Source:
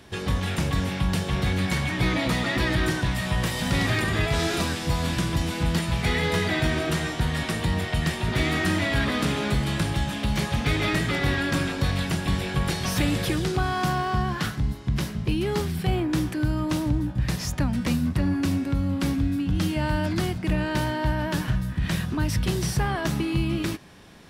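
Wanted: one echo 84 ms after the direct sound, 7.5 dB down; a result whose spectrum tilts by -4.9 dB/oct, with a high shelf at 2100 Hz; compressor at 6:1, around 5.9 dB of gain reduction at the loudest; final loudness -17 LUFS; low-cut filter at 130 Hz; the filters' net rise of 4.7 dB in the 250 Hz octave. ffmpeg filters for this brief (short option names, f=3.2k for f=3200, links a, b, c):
-af "highpass=130,equalizer=f=250:t=o:g=7,highshelf=f=2.1k:g=3.5,acompressor=threshold=-23dB:ratio=6,aecho=1:1:84:0.422,volume=9.5dB"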